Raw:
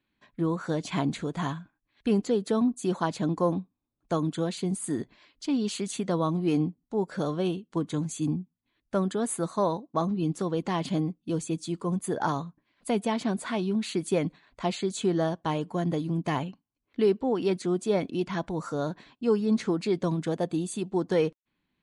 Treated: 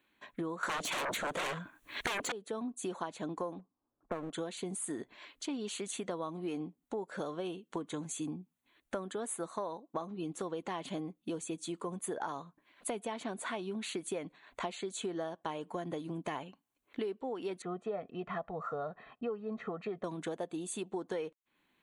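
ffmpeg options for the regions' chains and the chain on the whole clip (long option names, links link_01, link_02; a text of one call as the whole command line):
ffmpeg -i in.wav -filter_complex "[0:a]asettb=1/sr,asplit=3[link_01][link_02][link_03];[link_01]atrim=end=0.634[link_04];[link_02]atrim=start=0.63:end=2.32,asetpts=PTS-STARTPTS,afade=type=in:duration=0.004:curve=qsin,afade=type=out:start_time=1.686:duration=0.004:curve=qsin,bandreject=frequency=790:width=6.8,aeval=exprs='0.211*sin(PI/2*10*val(0)/0.211)':channel_layout=same[link_05];[link_03]atrim=start=2.316[link_06];[link_04][link_05]acrossfade=duration=0.004:curve1=hsin:curve2=qsin[link_07];[link_07][link_06]acrossfade=duration=0.004:curve1=qsin:curve2=hsin,asettb=1/sr,asplit=3[link_08][link_09][link_10];[link_08]atrim=end=3.594[link_11];[link_09]atrim=start=3.59:end=4.33,asetpts=PTS-STARTPTS,afade=type=in:duration=0.004:curve=qsin,afade=type=out:start_time=0.736:duration=0.004:curve=qsin,lowpass=frequency=1400:width=0.5412,lowpass=frequency=1400:width=1.3066,aeval=exprs='clip(val(0),-1,0.02)':channel_layout=same[link_12];[link_10]atrim=start=4.326[link_13];[link_11][link_12]acrossfade=duration=0.004:curve1=hsin:curve2=qsin[link_14];[link_14][link_13]acrossfade=duration=0.004:curve1=qsin:curve2=hsin,asettb=1/sr,asplit=3[link_15][link_16][link_17];[link_15]atrim=end=17.624[link_18];[link_16]atrim=start=17.62:end=20.04,asetpts=PTS-STARTPTS,afade=type=in:duration=0.004:curve=qsin,afade=type=out:start_time=2.416:duration=0.004:curve=qsin,lowpass=1600,bandreject=frequency=550:width=6.4,aecho=1:1:1.6:0.74,atrim=end_sample=106722[link_19];[link_17]atrim=start=20.036[link_20];[link_18][link_19]acrossfade=duration=0.004:curve1=hsin:curve2=qsin[link_21];[link_21][link_20]acrossfade=duration=0.004:curve1=qsin:curve2=hsin,bass=frequency=250:gain=-14,treble=frequency=4000:gain=0,acompressor=threshold=-44dB:ratio=6,equalizer=frequency=5000:width_type=o:width=0.32:gain=-12.5,volume=7.5dB" out.wav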